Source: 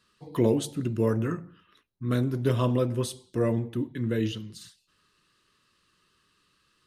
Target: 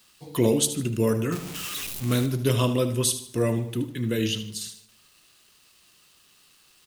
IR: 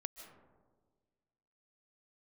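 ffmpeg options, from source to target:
-filter_complex "[0:a]asettb=1/sr,asplit=3[link_01][link_02][link_03];[link_01]atrim=end=1.324[link_04];[link_02]atrim=start=1.32:end=2.26,asetpts=PTS-STARTPTS,afade=type=in:duration=0.004:curve=qsin,afade=type=out:start_time=0.936:duration=0.004:curve=qsin,aeval=exprs='val(0)+0.5*0.015*sgn(val(0))':channel_layout=same[link_05];[link_03]atrim=start=2.256[link_06];[link_04][link_05]acrossfade=duration=0.004:curve1=hsin:curve2=qsin[link_07];[link_07][link_06]acrossfade=duration=0.004:curve1=qsin:curve2=hsin,aexciter=amount=3.2:drive=3.7:freq=2300,acrusher=bits=9:mix=0:aa=0.000001,aecho=1:1:76|152|228|304:0.251|0.0879|0.0308|0.0108,asplit=2[link_08][link_09];[1:a]atrim=start_sample=2205,asetrate=79380,aresample=44100[link_10];[link_09][link_10]afir=irnorm=-1:irlink=0,volume=-5dB[link_11];[link_08][link_11]amix=inputs=2:normalize=0"

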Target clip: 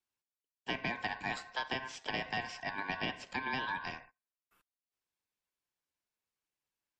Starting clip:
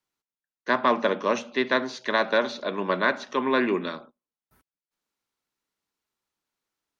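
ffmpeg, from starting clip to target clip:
ffmpeg -i in.wav -filter_complex "[0:a]aeval=exprs='val(0)*sin(2*PI*1300*n/s)':channel_layout=same,acrossover=split=94|1200|3100[link_01][link_02][link_03][link_04];[link_01]acompressor=threshold=-53dB:ratio=4[link_05];[link_02]acompressor=threshold=-32dB:ratio=4[link_06];[link_03]acompressor=threshold=-35dB:ratio=4[link_07];[link_04]acompressor=threshold=-38dB:ratio=4[link_08];[link_05][link_06][link_07][link_08]amix=inputs=4:normalize=0,volume=-5dB" -ar 48000 -c:a libmp3lame -b:a 56k out.mp3

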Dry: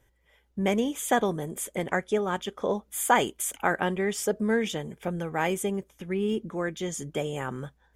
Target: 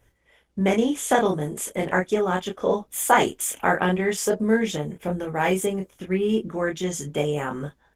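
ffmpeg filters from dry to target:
ffmpeg -i in.wav -filter_complex "[0:a]asettb=1/sr,asplit=3[link_01][link_02][link_03];[link_01]atrim=end=4.364[link_04];[link_02]atrim=start=4.36:end=5.41,asetpts=PTS-STARTPTS,afade=type=in:duration=0.004:curve=qsin,afade=type=out:start_time=1.046:duration=0.004:curve=qsin,equalizer=frequency=2300:width=0.33:gain=-3[link_05];[link_03]atrim=start=5.406[link_06];[link_04][link_05]acrossfade=duration=0.004:curve1=hsin:curve2=qsin[link_07];[link_07][link_06]acrossfade=duration=0.004:curve1=qsin:curve2=hsin,aecho=1:1:27|38:0.708|0.188,volume=3.5dB" -ar 48000 -c:a libopus -b:a 16k out.opus

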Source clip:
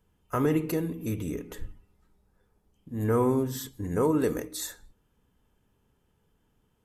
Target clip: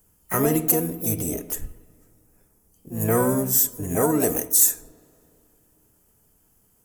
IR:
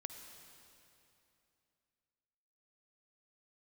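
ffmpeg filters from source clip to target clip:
-filter_complex "[0:a]asplit=2[link_01][link_02];[link_02]asetrate=66075,aresample=44100,atempo=0.66742,volume=-6dB[link_03];[link_01][link_03]amix=inputs=2:normalize=0,aexciter=amount=6.2:drive=7.2:freq=5700,asplit=2[link_04][link_05];[1:a]atrim=start_sample=2205,lowpass=2900[link_06];[link_05][link_06]afir=irnorm=-1:irlink=0,volume=-12dB[link_07];[link_04][link_07]amix=inputs=2:normalize=0,volume=1.5dB"

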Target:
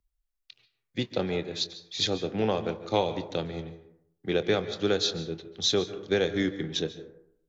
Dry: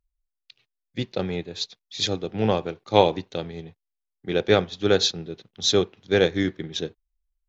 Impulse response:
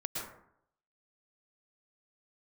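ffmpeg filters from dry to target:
-filter_complex "[0:a]acrossover=split=180|6900[link_01][link_02][link_03];[link_01]acompressor=threshold=-38dB:ratio=4[link_04];[link_02]acompressor=threshold=-23dB:ratio=4[link_05];[link_03]acompressor=threshold=-48dB:ratio=4[link_06];[link_04][link_05][link_06]amix=inputs=3:normalize=0,asplit=2[link_07][link_08];[1:a]atrim=start_sample=2205,adelay=25[link_09];[link_08][link_09]afir=irnorm=-1:irlink=0,volume=-13.5dB[link_10];[link_07][link_10]amix=inputs=2:normalize=0"

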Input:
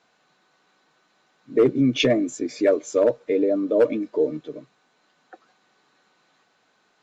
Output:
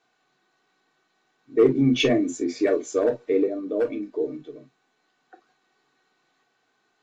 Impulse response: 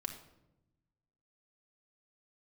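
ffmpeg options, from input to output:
-filter_complex "[0:a]asettb=1/sr,asplit=3[link_01][link_02][link_03];[link_01]atrim=end=1.584[link_04];[link_02]atrim=start=1.58:end=3.47,asetpts=PTS-STARTPTS,afade=type=in:duration=0.004:curve=qsin,afade=type=out:start_time=1.886:duration=0.004:curve=qsin,acontrast=21[link_05];[link_03]atrim=start=3.466[link_06];[link_04][link_05]acrossfade=duration=0.004:curve1=hsin:curve2=qsin[link_07];[link_07][link_06]acrossfade=duration=0.004:curve1=qsin:curve2=hsin[link_08];[1:a]atrim=start_sample=2205,atrim=end_sample=3528,asetrate=61740,aresample=44100[link_09];[link_08][link_09]afir=irnorm=-1:irlink=0,volume=-1.5dB"

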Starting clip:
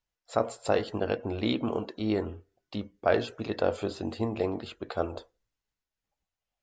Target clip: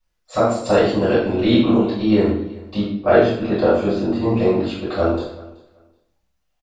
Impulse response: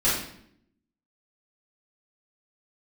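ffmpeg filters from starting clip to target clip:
-filter_complex "[0:a]asettb=1/sr,asplit=3[link_01][link_02][link_03];[link_01]atrim=end=2.834[link_04];[link_02]atrim=start=2.83:end=4.24,asetpts=PTS-STARTPTS,afade=type=in:duration=0.004:curve=qsin,afade=type=out:start_time=1.406:duration=0.004:curve=qsin,lowpass=frequency=2600:poles=1[link_05];[link_03]atrim=start=4.236[link_06];[link_04][link_05]acrossfade=duration=0.004:curve1=hsin:curve2=qsin[link_07];[link_07][link_06]acrossfade=duration=0.004:curve1=qsin:curve2=hsin,aecho=1:1:379|758:0.0891|0.016[link_08];[1:a]atrim=start_sample=2205,afade=type=out:start_time=0.39:duration=0.01,atrim=end_sample=17640[link_09];[link_08][link_09]afir=irnorm=-1:irlink=0,volume=-2.5dB"

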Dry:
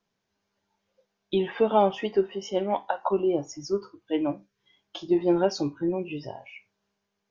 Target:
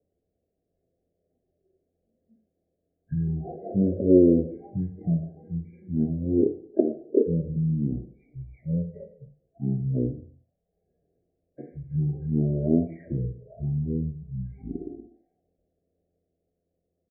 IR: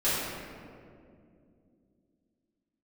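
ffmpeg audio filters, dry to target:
-filter_complex "[0:a]acrossover=split=470[link_01][link_02];[link_01]alimiter=level_in=1dB:limit=-24dB:level=0:latency=1,volume=-1dB[link_03];[link_03][link_02]amix=inputs=2:normalize=0,lowpass=frequency=1200:width_type=q:width=2.7,asetrate=18846,aresample=44100,aecho=1:1:76|152|228:0.0668|0.0354|0.0188,afftfilt=real='re*eq(mod(floor(b*sr/1024/790),2),0)':imag='im*eq(mod(floor(b*sr/1024/790),2),0)':win_size=1024:overlap=0.75"

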